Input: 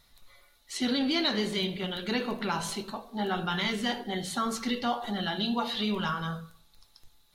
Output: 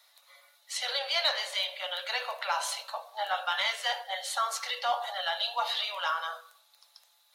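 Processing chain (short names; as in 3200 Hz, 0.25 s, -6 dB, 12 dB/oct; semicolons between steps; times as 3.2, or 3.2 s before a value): steep high-pass 530 Hz 96 dB/oct; in parallel at -10.5 dB: overloaded stage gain 26.5 dB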